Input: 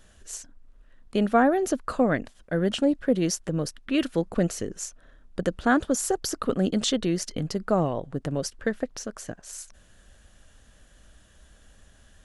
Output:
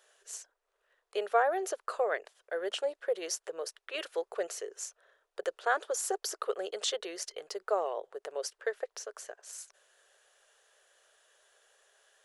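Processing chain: elliptic high-pass 410 Hz, stop band 40 dB; trim -4.5 dB

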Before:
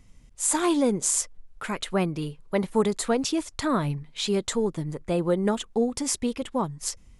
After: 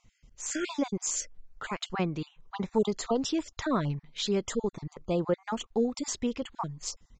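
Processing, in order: random holes in the spectrogram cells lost 25%; resampled via 16 kHz; trim -3 dB

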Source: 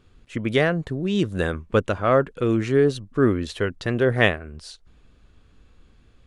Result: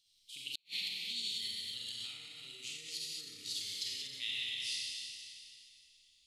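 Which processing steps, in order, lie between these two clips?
pitch bend over the whole clip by +3.5 st ending unshifted; treble shelf 5.7 kHz -3.5 dB; Schroeder reverb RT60 2.6 s, combs from 30 ms, DRR -5.5 dB; peak limiter -11.5 dBFS, peak gain reduction 8 dB; inverse Chebyshev high-pass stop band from 1.7 kHz, stop band 40 dB; inverted gate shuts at -25 dBFS, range -41 dB

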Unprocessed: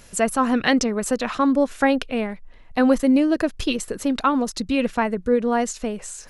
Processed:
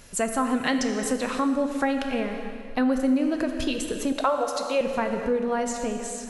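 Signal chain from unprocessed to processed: 4.12–4.81 s: resonant high-pass 600 Hz, resonance Q 6.5; plate-style reverb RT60 2.1 s, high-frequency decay 0.9×, DRR 5.5 dB; compression 2:1, threshold -23 dBFS, peak gain reduction 7.5 dB; trim -1.5 dB

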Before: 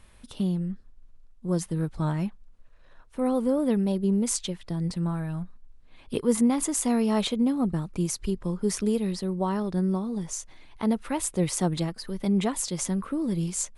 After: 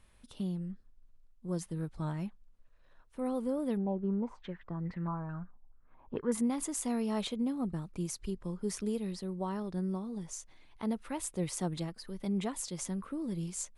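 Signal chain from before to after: 3.77–6.32 s: step-sequenced low-pass 4.6 Hz 840–1900 Hz; trim -9 dB

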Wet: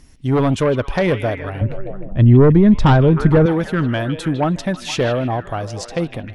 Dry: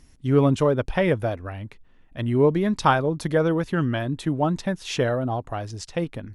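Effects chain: on a send: repeats whose band climbs or falls 155 ms, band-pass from 3 kHz, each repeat -0.7 oct, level -7 dB; on the sum: sine folder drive 8 dB, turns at -5 dBFS; 1.61–3.46 s: RIAA curve playback; trim -6 dB

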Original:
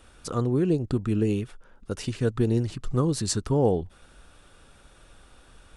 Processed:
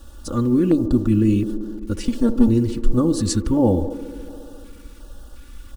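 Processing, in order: 2.05–2.48 s: comb filter that takes the minimum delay 4.4 ms; bit crusher 9-bit; bass shelf 260 Hz +11.5 dB; comb 3.5 ms, depth 82%; feedback echo behind a band-pass 70 ms, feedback 83%, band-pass 500 Hz, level -11 dB; LFO notch square 1.4 Hz 690–2200 Hz

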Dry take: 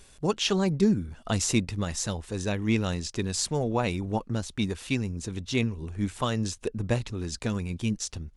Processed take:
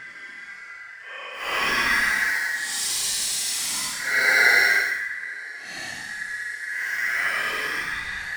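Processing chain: ring modulator 1.8 kHz; multi-head delay 94 ms, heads first and third, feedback 71%, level -22.5 dB; in parallel at -10 dB: bit crusher 4-bit; on the sum: Paulstretch 11×, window 0.05 s, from 1.16 s; gated-style reverb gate 220 ms flat, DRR 8.5 dB; trim +3 dB

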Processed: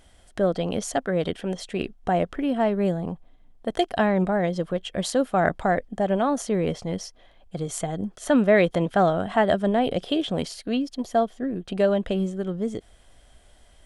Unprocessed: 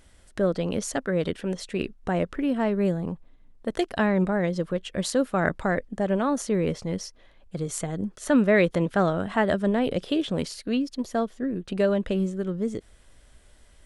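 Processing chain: small resonant body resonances 720/3200 Hz, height 9 dB, ringing for 20 ms

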